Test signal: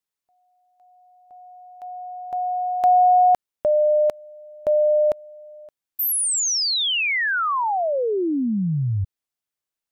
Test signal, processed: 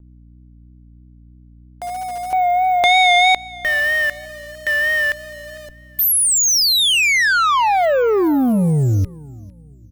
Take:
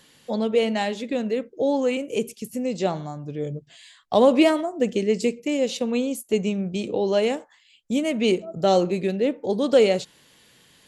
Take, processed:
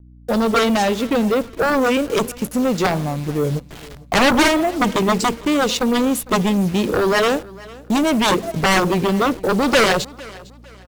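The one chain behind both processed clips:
hold until the input has moved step −39.5 dBFS
in parallel at −6 dB: slack as between gear wheels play −33.5 dBFS
on the sum: harmonic generator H 2 −22 dB, 6 −43 dB, 7 −9 dB, 8 −35 dB, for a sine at −1.5 dBFS
mains hum 60 Hz, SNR 29 dB
pitch vibrato 3.1 Hz 47 cents
soft clipping −14 dBFS
on a send: repeating echo 454 ms, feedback 34%, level −21.5 dB
on the sum: level +5 dB

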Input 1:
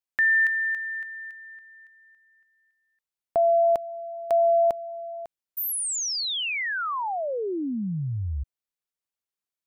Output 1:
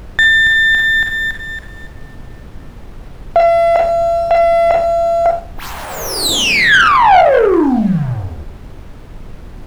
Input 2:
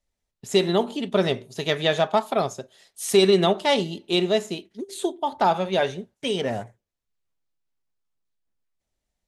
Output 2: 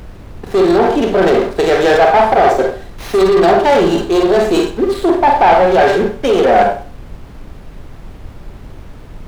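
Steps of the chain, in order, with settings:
high-pass filter 270 Hz 6 dB per octave
parametric band 360 Hz +14.5 dB 2.8 octaves
notch filter 630 Hz, Q 12
in parallel at −3 dB: brickwall limiter −6.5 dBFS
on the sum: leveller curve on the samples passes 2
reversed playback
downward compressor 5 to 1, threshold −14 dBFS
reversed playback
four-comb reverb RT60 0.4 s, combs from 32 ms, DRR 2.5 dB
mid-hump overdrive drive 11 dB, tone 2,500 Hz, clips at −2 dBFS
hollow resonant body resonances 750/1,600/4,000 Hz, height 8 dB, ringing for 20 ms
soft clipping −5.5 dBFS
background noise brown −31 dBFS
windowed peak hold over 5 samples
level +2.5 dB

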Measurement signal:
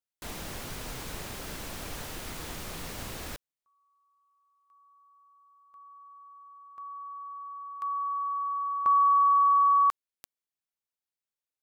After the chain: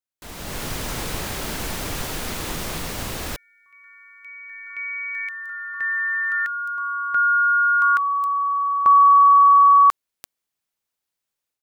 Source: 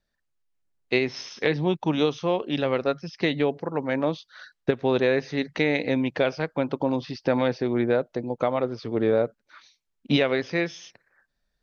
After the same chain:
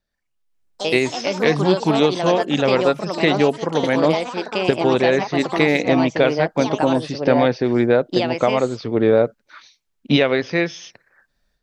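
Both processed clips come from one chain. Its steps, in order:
automatic gain control gain up to 10.5 dB
delay with pitch and tempo change per echo 112 ms, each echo +4 semitones, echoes 3, each echo −6 dB
level −1 dB

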